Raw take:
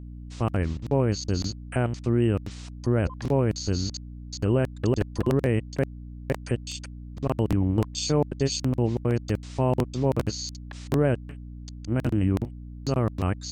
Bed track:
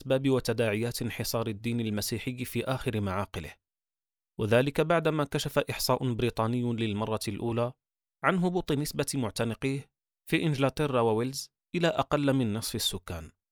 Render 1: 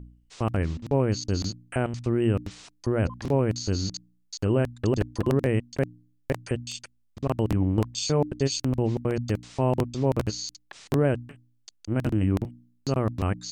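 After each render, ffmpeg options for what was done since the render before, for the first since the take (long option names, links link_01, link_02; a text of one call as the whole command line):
ffmpeg -i in.wav -af "bandreject=frequency=60:width_type=h:width=4,bandreject=frequency=120:width_type=h:width=4,bandreject=frequency=180:width_type=h:width=4,bandreject=frequency=240:width_type=h:width=4,bandreject=frequency=300:width_type=h:width=4" out.wav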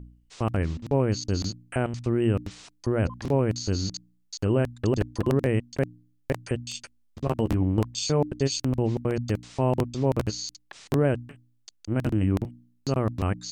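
ffmpeg -i in.wav -filter_complex "[0:a]asettb=1/sr,asplit=3[link_01][link_02][link_03];[link_01]atrim=end=6.724[link_04];[link_02]atrim=start=6.72:end=7.61,asetpts=PTS-STARTPTS,afade=type=in:duration=0.004:curve=qsin,afade=type=out:start_time=0.886:duration=0.004:curve=qsin,asplit=2[link_05][link_06];[link_06]adelay=13,volume=-9dB[link_07];[link_05][link_07]amix=inputs=2:normalize=0,atrim=end_sample=39249[link_08];[link_03]atrim=start=7.606[link_09];[link_04][link_08]acrossfade=duration=0.004:curve1=hsin:curve2=qsin[link_10];[link_10][link_09]acrossfade=duration=0.004:curve1=qsin:curve2=hsin" out.wav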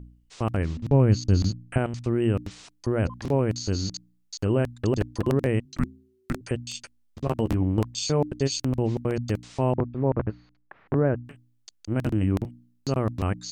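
ffmpeg -i in.wav -filter_complex "[0:a]asettb=1/sr,asplit=3[link_01][link_02][link_03];[link_01]atrim=end=0.774[link_04];[link_02]atrim=start=0.77:end=1.78,asetpts=PTS-STARTPTS,afade=type=in:duration=0.004:curve=qsin,afade=type=out:start_time=1.006:duration=0.004:curve=qsin,bass=frequency=250:gain=8,treble=frequency=4000:gain=-3[link_05];[link_03]atrim=start=1.776[link_06];[link_04][link_05]acrossfade=duration=0.004:curve1=hsin:curve2=qsin[link_07];[link_07][link_06]acrossfade=duration=0.004:curve1=qsin:curve2=hsin,asettb=1/sr,asplit=3[link_08][link_09][link_10];[link_08]atrim=end=5.654[link_11];[link_09]atrim=start=5.65:end=6.41,asetpts=PTS-STARTPTS,afade=type=in:duration=0.004:curve=qsin,afade=type=out:start_time=0.756:duration=0.004:curve=qsin,afreqshift=-380[link_12];[link_10]atrim=start=6.406[link_13];[link_11][link_12]acrossfade=duration=0.004:curve1=hsin:curve2=qsin[link_14];[link_14][link_13]acrossfade=duration=0.004:curve1=qsin:curve2=hsin,asplit=3[link_15][link_16][link_17];[link_15]afade=type=out:start_time=9.72:duration=0.02[link_18];[link_16]lowpass=frequency=1800:width=0.5412,lowpass=frequency=1800:width=1.3066,afade=type=in:start_time=9.72:duration=0.02,afade=type=out:start_time=11.24:duration=0.02[link_19];[link_17]afade=type=in:start_time=11.24:duration=0.02[link_20];[link_18][link_19][link_20]amix=inputs=3:normalize=0" out.wav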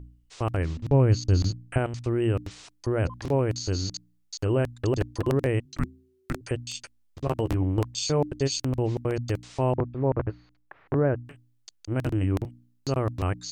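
ffmpeg -i in.wav -af "equalizer=frequency=210:width=5.3:gain=-14" out.wav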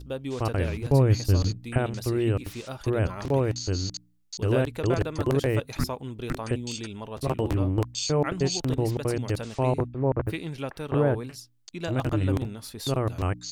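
ffmpeg -i in.wav -i bed.wav -filter_complex "[1:a]volume=-7dB[link_01];[0:a][link_01]amix=inputs=2:normalize=0" out.wav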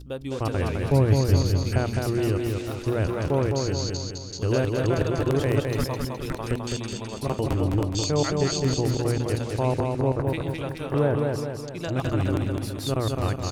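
ffmpeg -i in.wav -af "aecho=1:1:209|418|627|836|1045|1254|1463:0.668|0.341|0.174|0.0887|0.0452|0.0231|0.0118" out.wav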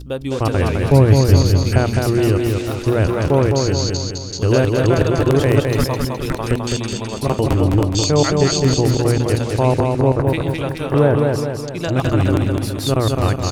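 ffmpeg -i in.wav -af "volume=8.5dB,alimiter=limit=-1dB:level=0:latency=1" out.wav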